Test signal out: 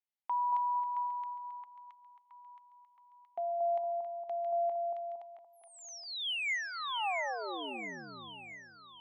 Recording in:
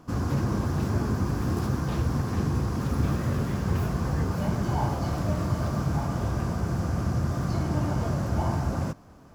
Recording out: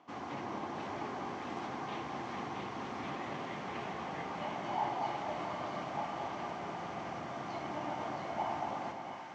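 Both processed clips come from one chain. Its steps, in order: speaker cabinet 410–5400 Hz, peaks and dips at 490 Hz -5 dB, 790 Hz +7 dB, 1500 Hz -5 dB, 2100 Hz +8 dB, 3100 Hz +5 dB, 5000 Hz -8 dB; split-band echo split 1100 Hz, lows 0.23 s, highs 0.671 s, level -4 dB; gain -6.5 dB

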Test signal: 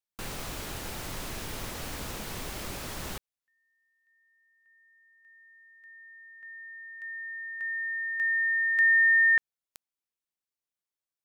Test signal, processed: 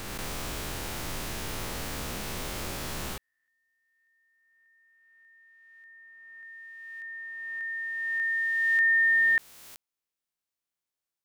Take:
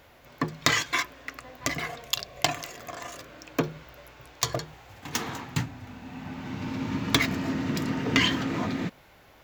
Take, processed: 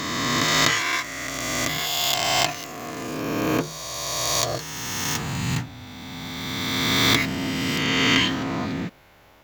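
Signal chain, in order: spectral swells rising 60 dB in 2.69 s; gain -1.5 dB

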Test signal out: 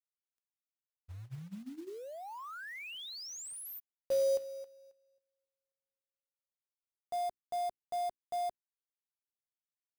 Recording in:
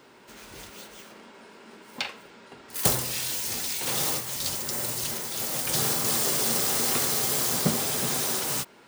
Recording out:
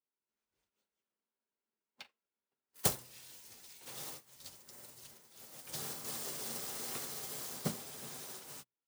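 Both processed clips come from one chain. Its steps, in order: notches 60/120/180/240/300/360 Hz; short-mantissa float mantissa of 2-bit; upward expander 2.5:1, over -47 dBFS; gain -6 dB

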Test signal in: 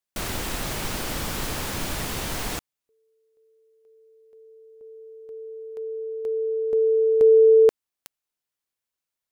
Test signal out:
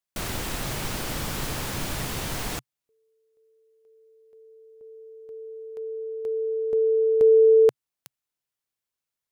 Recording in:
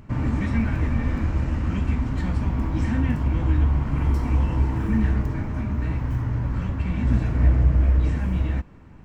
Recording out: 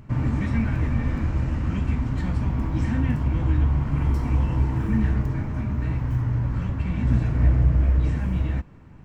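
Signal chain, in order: bell 130 Hz +5 dB 0.51 oct; gain -1.5 dB

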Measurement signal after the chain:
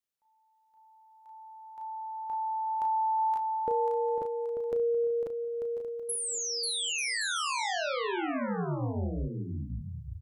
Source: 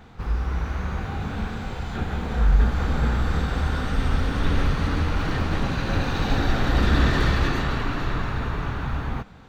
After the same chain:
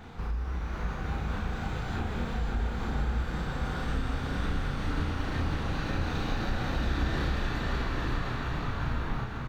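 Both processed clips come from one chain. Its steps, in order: doubler 34 ms -3 dB; compressor 3:1, threshold -33 dBFS; bouncing-ball echo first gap 0.54 s, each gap 0.65×, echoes 5

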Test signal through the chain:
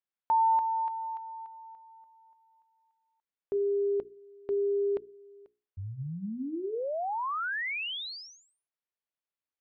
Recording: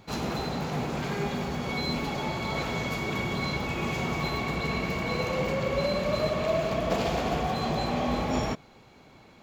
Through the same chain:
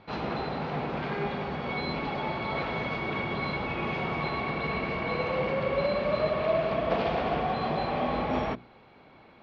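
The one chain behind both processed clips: Bessel low-pass 2600 Hz, order 8; low shelf 250 Hz -6.5 dB; notches 60/120/180/240/300/360/420 Hz; gain +2 dB

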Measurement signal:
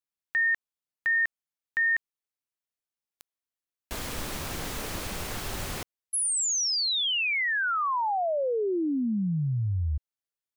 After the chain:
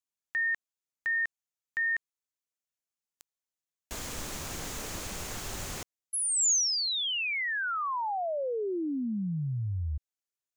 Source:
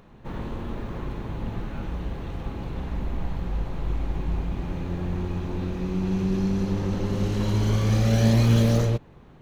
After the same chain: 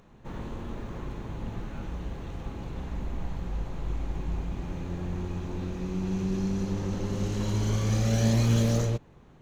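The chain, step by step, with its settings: bell 6800 Hz +7.5 dB 0.55 oct; gain -4.5 dB

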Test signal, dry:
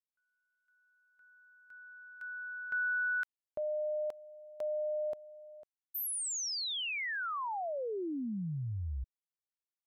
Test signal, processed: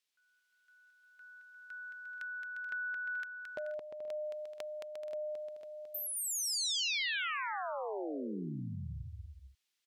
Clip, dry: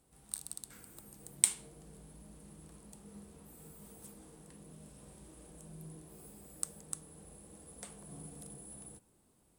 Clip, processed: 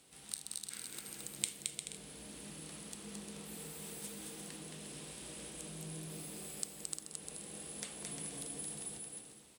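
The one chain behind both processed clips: weighting filter D; compressor 2.5:1, threshold -48 dBFS; on a send: bouncing-ball echo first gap 0.22 s, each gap 0.6×, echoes 5; on the sum: gain +4.5 dB

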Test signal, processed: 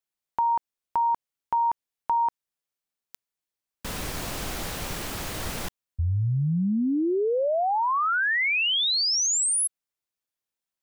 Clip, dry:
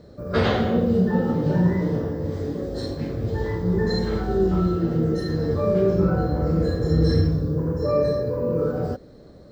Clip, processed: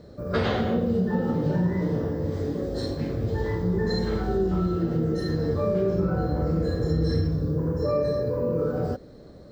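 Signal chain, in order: compressor 2.5:1, threshold -22 dBFS

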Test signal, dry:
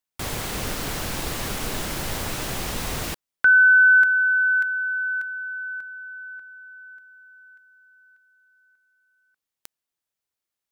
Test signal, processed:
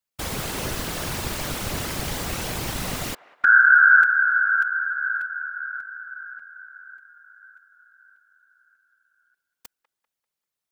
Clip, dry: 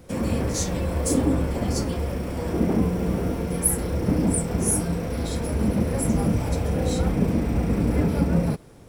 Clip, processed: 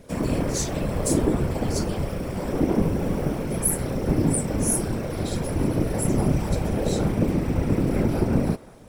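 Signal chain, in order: whisperiser; band-limited delay 0.196 s, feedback 39%, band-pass 1100 Hz, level -17 dB

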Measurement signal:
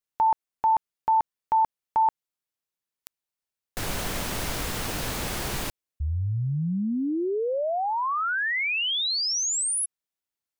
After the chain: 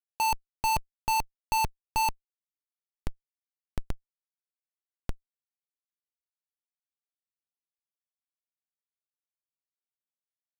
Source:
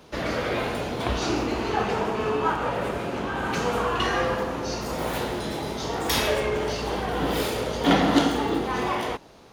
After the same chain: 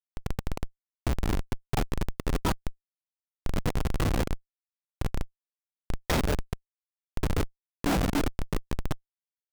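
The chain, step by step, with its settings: reverb removal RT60 1.1 s; darkening echo 0.133 s, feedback 71%, low-pass 2200 Hz, level -24 dB; Schmitt trigger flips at -20 dBFS; gain +4 dB

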